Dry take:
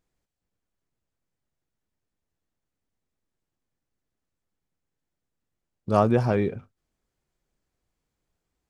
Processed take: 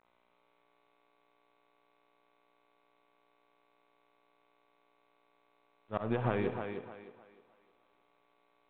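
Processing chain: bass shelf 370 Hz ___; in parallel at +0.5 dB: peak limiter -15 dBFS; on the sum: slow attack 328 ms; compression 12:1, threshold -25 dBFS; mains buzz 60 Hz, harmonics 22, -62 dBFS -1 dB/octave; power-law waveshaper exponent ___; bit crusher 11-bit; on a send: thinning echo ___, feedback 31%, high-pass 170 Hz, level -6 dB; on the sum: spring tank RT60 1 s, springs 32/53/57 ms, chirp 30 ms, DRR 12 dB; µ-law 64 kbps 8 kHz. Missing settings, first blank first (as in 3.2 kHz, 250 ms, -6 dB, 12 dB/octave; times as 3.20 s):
-5.5 dB, 1.4, 307 ms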